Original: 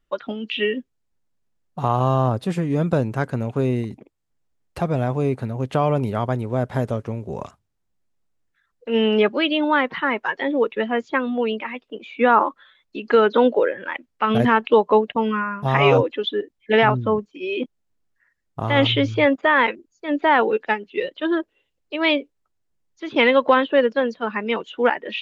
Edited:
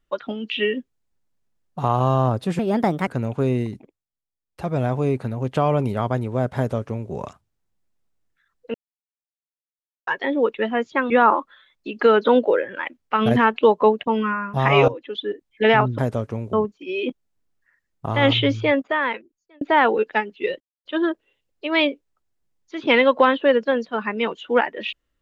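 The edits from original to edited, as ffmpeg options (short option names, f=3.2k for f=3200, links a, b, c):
-filter_complex "[0:a]asplit=13[a][b][c][d][e][f][g][h][i][j][k][l][m];[a]atrim=end=2.594[n];[b]atrim=start=2.59:end=3.25,asetpts=PTS-STARTPTS,asetrate=60417,aresample=44100,atrim=end_sample=21245,asetpts=PTS-STARTPTS[o];[c]atrim=start=3.246:end=4.23,asetpts=PTS-STARTPTS,afade=t=out:st=0.664:d=0.32:silence=0.125893[p];[d]atrim=start=4.23:end=4.65,asetpts=PTS-STARTPTS,volume=-18dB[q];[e]atrim=start=4.65:end=8.92,asetpts=PTS-STARTPTS,afade=t=in:d=0.32:silence=0.125893,afade=t=out:st=4.266:d=0.004:c=hsin[r];[f]atrim=start=8.92:end=10.25,asetpts=PTS-STARTPTS,volume=0[s];[g]atrim=start=10.25:end=11.282,asetpts=PTS-STARTPTS,afade=t=in:d=0.004:c=hsin[t];[h]atrim=start=12.188:end=15.97,asetpts=PTS-STARTPTS,afade=t=out:st=3.778:d=0.004:c=hsin:silence=0.158489[u];[i]atrim=start=15.97:end=17.072,asetpts=PTS-STARTPTS,afade=t=in:d=0.59:silence=0.158489[v];[j]atrim=start=6.738:end=7.292[w];[k]atrim=start=17.068:end=20.15,asetpts=PTS-STARTPTS,afade=t=out:st=1.932:d=1.15[x];[l]atrim=start=20.15:end=21.14,asetpts=PTS-STARTPTS,afade=t=in:d=0.004:c=hsin,afade=t=out:st=0.986:d=0.004:c=hsin,apad=pad_dur=0.25[y];[m]atrim=start=21.14,asetpts=PTS-STARTPTS,afade=t=in:d=0.004:c=hsin[z];[n][o]acrossfade=d=0.004:c1=hsin:c2=hsin[aa];[p][q][r][s][t]concat=n=5:v=0:a=1[ab];[aa][ab]acrossfade=d=0.004:c1=hsin:c2=hsin[ac];[u][v]concat=n=2:v=0:a=1[ad];[ac][ad]acrossfade=d=0.004:c1=hsin:c2=hsin[ae];[ae][w]acrossfade=d=0.004:c1=hsin:c2=hsin[af];[x][y][z]concat=n=3:v=0:a=1[ag];[af][ag]acrossfade=d=0.004:c1=hsin:c2=hsin"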